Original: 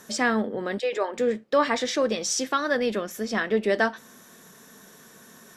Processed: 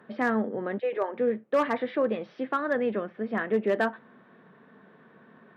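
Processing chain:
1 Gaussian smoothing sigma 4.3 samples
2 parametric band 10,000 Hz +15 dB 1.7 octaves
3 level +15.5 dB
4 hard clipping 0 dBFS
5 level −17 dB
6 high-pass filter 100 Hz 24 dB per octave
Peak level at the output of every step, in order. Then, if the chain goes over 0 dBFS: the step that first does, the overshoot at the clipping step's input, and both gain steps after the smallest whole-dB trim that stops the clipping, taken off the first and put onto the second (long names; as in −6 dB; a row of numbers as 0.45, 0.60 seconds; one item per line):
−10.5, −10.0, +5.5, 0.0, −17.0, −13.5 dBFS
step 3, 5.5 dB
step 3 +9.5 dB, step 5 −11 dB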